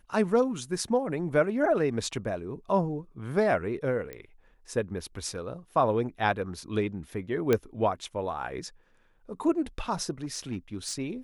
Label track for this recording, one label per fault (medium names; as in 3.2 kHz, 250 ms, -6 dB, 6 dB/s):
4.130000	4.130000	pop -24 dBFS
7.530000	7.530000	pop -11 dBFS
10.230000	10.940000	clipped -27.5 dBFS